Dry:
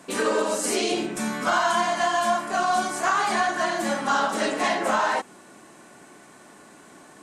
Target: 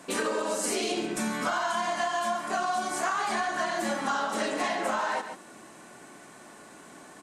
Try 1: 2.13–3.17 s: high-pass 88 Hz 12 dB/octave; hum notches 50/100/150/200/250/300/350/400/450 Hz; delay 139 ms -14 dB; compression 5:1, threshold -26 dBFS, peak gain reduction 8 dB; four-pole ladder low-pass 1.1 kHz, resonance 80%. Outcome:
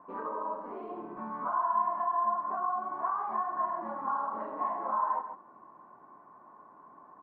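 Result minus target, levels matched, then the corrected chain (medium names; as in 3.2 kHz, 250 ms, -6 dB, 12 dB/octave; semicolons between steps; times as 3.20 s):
1 kHz band +3.5 dB
2.13–3.17 s: high-pass 88 Hz 12 dB/octave; hum notches 50/100/150/200/250/300/350/400/450 Hz; delay 139 ms -14 dB; compression 5:1, threshold -26 dBFS, peak gain reduction 8 dB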